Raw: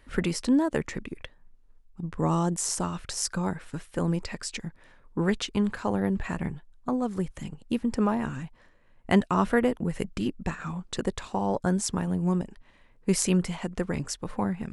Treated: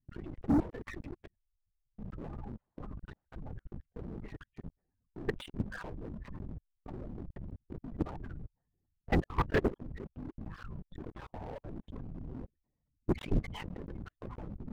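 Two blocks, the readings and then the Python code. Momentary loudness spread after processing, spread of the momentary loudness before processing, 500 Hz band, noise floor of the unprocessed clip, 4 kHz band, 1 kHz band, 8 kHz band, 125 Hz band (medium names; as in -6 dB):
17 LU, 13 LU, -10.5 dB, -58 dBFS, -16.0 dB, -12.0 dB, under -30 dB, -9.0 dB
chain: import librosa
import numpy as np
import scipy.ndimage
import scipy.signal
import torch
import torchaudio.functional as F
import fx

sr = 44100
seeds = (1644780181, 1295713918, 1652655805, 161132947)

y = fx.high_shelf(x, sr, hz=2600.0, db=4.5)
y = fx.lpc_vocoder(y, sr, seeds[0], excitation='whisper', order=10)
y = fx.spec_gate(y, sr, threshold_db=-15, keep='strong')
y = fx.level_steps(y, sr, step_db=22)
y = fx.env_lowpass(y, sr, base_hz=500.0, full_db=-28.0)
y = fx.leveller(y, sr, passes=3)
y = y * 10.0 ** (-8.5 / 20.0)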